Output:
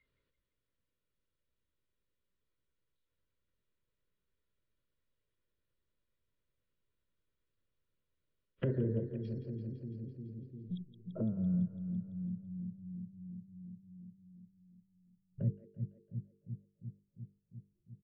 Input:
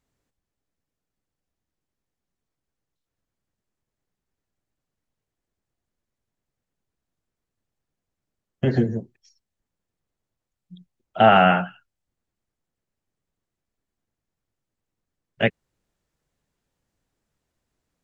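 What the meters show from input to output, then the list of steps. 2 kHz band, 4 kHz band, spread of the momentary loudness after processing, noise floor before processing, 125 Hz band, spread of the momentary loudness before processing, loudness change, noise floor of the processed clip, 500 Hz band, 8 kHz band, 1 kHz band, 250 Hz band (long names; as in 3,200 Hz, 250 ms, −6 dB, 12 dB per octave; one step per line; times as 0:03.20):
−34.5 dB, below −30 dB, 20 LU, −85 dBFS, −6.5 dB, 13 LU, −20.0 dB, −85 dBFS, −19.0 dB, can't be measured, below −40 dB, −9.0 dB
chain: treble cut that deepens with the level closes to 920 Hz, closed at −25 dBFS
noise reduction from a noise print of the clip's start 27 dB
high-shelf EQ 3,800 Hz −12 dB
mains-hum notches 50/100/150/200/250/300/350/400/450 Hz
comb filter 2.1 ms, depth 31%
reversed playback
downward compressor 10 to 1, threshold −26 dBFS, peak gain reduction 14 dB
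reversed playback
low-pass filter sweep 3,700 Hz → 150 Hz, 0:10.70–0:11.35
Butterworth band-reject 790 Hz, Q 2.3
on a send: echo with a time of its own for lows and highs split 310 Hz, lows 350 ms, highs 168 ms, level −11 dB
on the sum: downsampling to 11,025 Hz
multiband upward and downward compressor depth 70%
level +2 dB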